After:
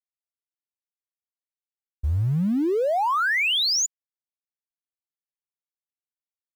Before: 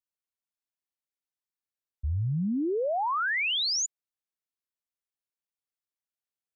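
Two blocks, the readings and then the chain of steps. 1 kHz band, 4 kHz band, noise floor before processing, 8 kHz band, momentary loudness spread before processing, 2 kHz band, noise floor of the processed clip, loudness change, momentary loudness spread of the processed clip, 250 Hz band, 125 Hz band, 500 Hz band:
+5.5 dB, +5.5 dB, below −85 dBFS, can't be measured, 8 LU, +5.5 dB, below −85 dBFS, +5.5 dB, 8 LU, +5.5 dB, +5.5 dB, +5.5 dB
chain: mu-law and A-law mismatch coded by mu
level +4.5 dB

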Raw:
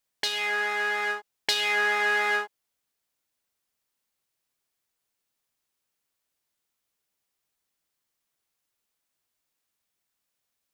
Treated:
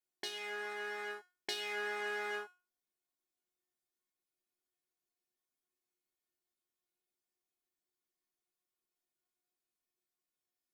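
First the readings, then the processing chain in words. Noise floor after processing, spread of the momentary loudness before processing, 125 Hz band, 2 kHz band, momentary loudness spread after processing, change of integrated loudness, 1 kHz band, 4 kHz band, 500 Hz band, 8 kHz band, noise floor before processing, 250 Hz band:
below −85 dBFS, 7 LU, can't be measured, −15.5 dB, 7 LU, −14.5 dB, −14.5 dB, −14.0 dB, −9.0 dB, −13.0 dB, −82 dBFS, −8.0 dB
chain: parametric band 300 Hz +9.5 dB 1.7 octaves
notch filter 2,800 Hz, Q 13
tuned comb filter 360 Hz, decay 0.32 s, harmonics all, mix 90%
level +1 dB

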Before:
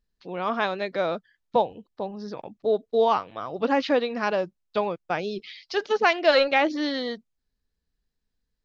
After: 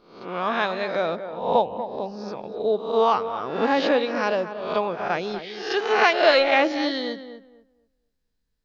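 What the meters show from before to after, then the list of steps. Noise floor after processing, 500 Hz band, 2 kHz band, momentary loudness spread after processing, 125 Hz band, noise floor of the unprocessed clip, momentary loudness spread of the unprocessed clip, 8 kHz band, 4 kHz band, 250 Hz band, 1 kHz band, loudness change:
−74 dBFS, +2.0 dB, +3.5 dB, 14 LU, +1.5 dB, −80 dBFS, 15 LU, can't be measured, +3.0 dB, +1.5 dB, +3.0 dB, +2.5 dB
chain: peak hold with a rise ahead of every peak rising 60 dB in 0.62 s
tape delay 239 ms, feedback 25%, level −9 dB, low-pass 1,400 Hz

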